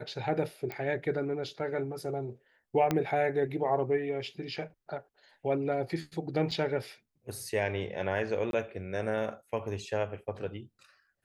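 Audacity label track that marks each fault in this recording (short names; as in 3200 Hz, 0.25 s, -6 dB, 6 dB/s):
0.720000	0.720000	pop -23 dBFS
2.910000	2.910000	pop -14 dBFS
6.510000	6.520000	gap 5.3 ms
8.510000	8.530000	gap 22 ms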